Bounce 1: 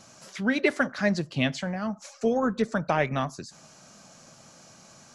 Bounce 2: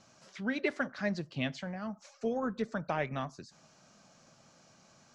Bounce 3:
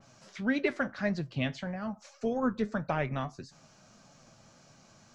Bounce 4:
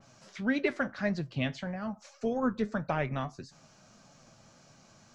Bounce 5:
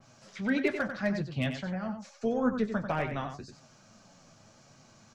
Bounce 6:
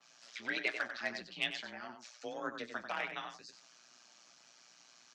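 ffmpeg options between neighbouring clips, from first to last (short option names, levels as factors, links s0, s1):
-af "lowpass=5900,volume=0.376"
-af "lowshelf=f=100:g=10,flanger=delay=7:depth=2.7:regen=68:speed=1.7:shape=sinusoidal,adynamicequalizer=threshold=0.00141:dfrequency=3200:dqfactor=0.7:tfrequency=3200:tqfactor=0.7:attack=5:release=100:ratio=0.375:range=2:mode=cutabove:tftype=highshelf,volume=2.11"
-af anull
-filter_complex "[0:a]flanger=delay=7.8:depth=3.1:regen=-43:speed=0.83:shape=triangular,acrossover=split=640[s0][s1];[s1]volume=29.9,asoftclip=hard,volume=0.0335[s2];[s0][s2]amix=inputs=2:normalize=0,asplit=2[s3][s4];[s4]adelay=93.29,volume=0.398,highshelf=f=4000:g=-2.1[s5];[s3][s5]amix=inputs=2:normalize=0,volume=1.58"
-af "tremolo=f=120:d=0.788,afreqshift=32,bandpass=f=3700:t=q:w=0.81:csg=0,volume=2"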